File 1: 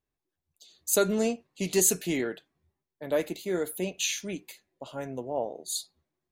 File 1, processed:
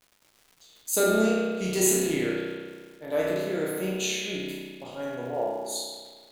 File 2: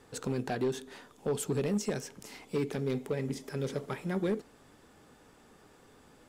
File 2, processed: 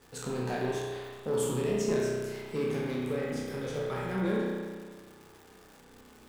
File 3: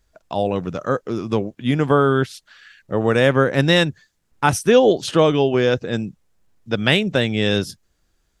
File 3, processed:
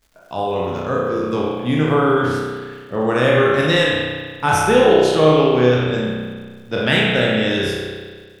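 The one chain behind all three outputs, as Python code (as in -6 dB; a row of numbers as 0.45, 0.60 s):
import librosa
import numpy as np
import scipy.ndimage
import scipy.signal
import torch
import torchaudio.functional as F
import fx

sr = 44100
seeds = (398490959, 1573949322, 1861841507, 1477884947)

y = fx.spec_trails(x, sr, decay_s=0.69)
y = fx.rev_spring(y, sr, rt60_s=1.6, pass_ms=(32,), chirp_ms=20, drr_db=-2.5)
y = fx.dmg_crackle(y, sr, seeds[0], per_s=440.0, level_db=-42.0)
y = y * 10.0 ** (-4.0 / 20.0)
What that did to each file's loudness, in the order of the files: +2.0, +2.0, +2.0 LU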